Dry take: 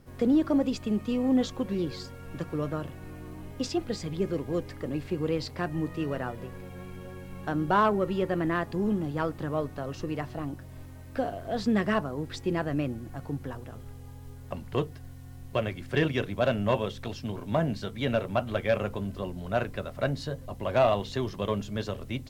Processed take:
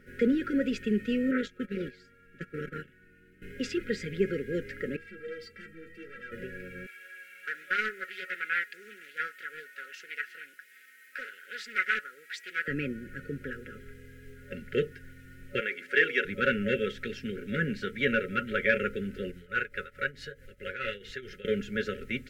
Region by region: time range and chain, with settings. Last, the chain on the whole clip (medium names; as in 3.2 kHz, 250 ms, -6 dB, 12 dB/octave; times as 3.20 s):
1.31–3.42 s: gate -34 dBFS, range -15 dB + peaking EQ 620 Hz -14.5 dB 0.32 oct + transformer saturation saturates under 650 Hz
4.96–6.32 s: hard clipper -32.5 dBFS + inharmonic resonator 98 Hz, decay 0.27 s, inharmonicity 0.03
6.86–12.68 s: high-pass 1.5 kHz + treble shelf 10 kHz +10 dB + loudspeaker Doppler distortion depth 0.41 ms
15.60–16.25 s: high-pass 420 Hz + hum notches 60/120/180/240/300/360/420/480/540 Hz
19.31–21.45 s: tremolo triangle 4.6 Hz, depth 85% + peaking EQ 240 Hz -10.5 dB 1.3 oct
whole clip: FFT filter 170 Hz 0 dB, 2 kHz +15 dB, 4.1 kHz -1 dB; FFT band-reject 560–1300 Hz; comb 4.8 ms, depth 52%; trim -5 dB